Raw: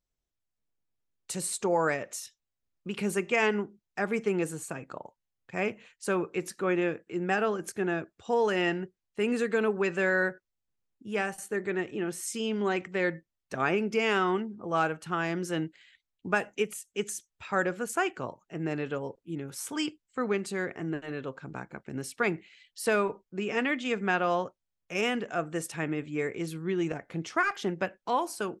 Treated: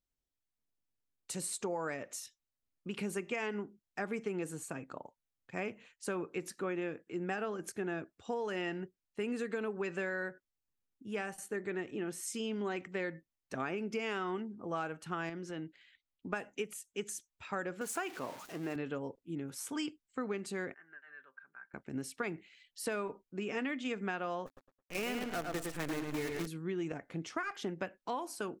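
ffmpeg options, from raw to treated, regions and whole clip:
-filter_complex "[0:a]asettb=1/sr,asplit=3[a][b][c];[a]atrim=end=15.294[d];[b]atrim=start=15.29:end=16.33,asetpts=PTS-STARTPTS,afade=t=in:d=0.004:c=qsin,afade=t=out:st=1.036:d=0.004:c=qsin,lowpass=5.4k,acompressor=threshold=-36dB:ratio=2.5:attack=3.2:release=140:knee=1:detection=peak[e];[c]atrim=start=16.326[f];[d][e]acrossfade=d=0.004:c1=hsin:c2=qsin[g];[g][f]acrossfade=d=0.004:c1=qsin:c2=hsin,asettb=1/sr,asplit=3[h][i][j];[h]atrim=end=17.814[k];[i]atrim=start=17.81:end=18.76,asetpts=PTS-STARTPTS,afade=t=in:d=0.004:c=qsin,afade=t=out:st=0.946:d=0.004:c=qsin,aeval=exprs='val(0)+0.5*0.0126*sgn(val(0))':c=same,highpass=f=310:p=1[l];[j]atrim=start=18.756[m];[k][l]acrossfade=d=0.004:c1=hsin:c2=qsin[n];[n][m]acrossfade=d=0.004:c1=qsin:c2=hsin,asettb=1/sr,asplit=3[o][p][q];[o]atrim=end=20.744[r];[p]atrim=start=20.74:end=21.74,asetpts=PTS-STARTPTS,afade=t=in:d=0.004:c=qsin,afade=t=out:st=0.996:d=0.004:c=qsin,bandpass=f=1.6k:t=q:w=7,aecho=1:1:5.1:0.42,atrim=end_sample=44100[s];[q]atrim=start=21.736[t];[r][s]acrossfade=d=0.004:c1=hsin:c2=qsin[u];[u][t]acrossfade=d=0.004:c1=qsin:c2=hsin,asettb=1/sr,asplit=3[v][w][x];[v]atrim=end=24.464[y];[w]atrim=start=24.46:end=26.47,asetpts=PTS-STARTPTS,afade=t=in:d=0.004:c=qsin,afade=t=out:st=2.006:d=0.004:c=qsin,lowshelf=f=170:g=3,acrusher=bits=6:dc=4:mix=0:aa=0.000001,asplit=2[z][aa];[aa]adelay=108,lowpass=f=4.5k:p=1,volume=-4.5dB,asplit=2[ab][ac];[ac]adelay=108,lowpass=f=4.5k:p=1,volume=0.29,asplit=2[ad][ae];[ae]adelay=108,lowpass=f=4.5k:p=1,volume=0.29,asplit=2[af][ag];[ag]adelay=108,lowpass=f=4.5k:p=1,volume=0.29[ah];[z][ab][ad][af][ah]amix=inputs=5:normalize=0,atrim=end_sample=88641[ai];[x]atrim=start=26.466[aj];[y][ai]acrossfade=d=0.004:c1=hsin:c2=qsin[ak];[ak][aj]acrossfade=d=0.004:c1=qsin:c2=hsin,equalizer=f=270:w=5.8:g=5.5,acompressor=threshold=-28dB:ratio=6,volume=-5dB"

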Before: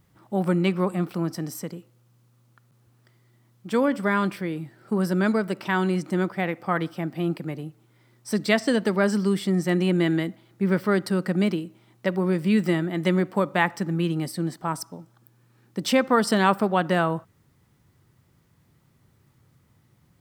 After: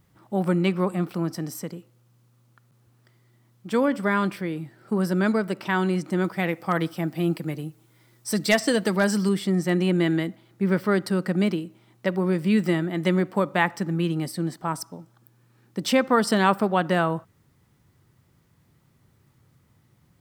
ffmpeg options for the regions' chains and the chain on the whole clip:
-filter_complex "[0:a]asettb=1/sr,asplit=3[a][b][c];[a]atrim=end=6.244[d];[b]atrim=start=6.24:end=9.29,asetpts=PTS-STARTPTS,afade=t=in:d=0.004:c=qsin,afade=t=out:st=3.046:d=0.004:c=qsin,highshelf=f=4.8k:g=8.5,aecho=1:1:6.2:0.3,atrim=end_sample=134505,aeval=exprs='0.335*(abs(mod(val(0)/0.335+3,4)-2)-1)':c=same[e];[c]atrim=start=9.286[f];[d][e]acrossfade=d=0.004:c1=hsin:c2=qsin[g];[g][f]acrossfade=d=0.004:c1=qsin:c2=hsin"

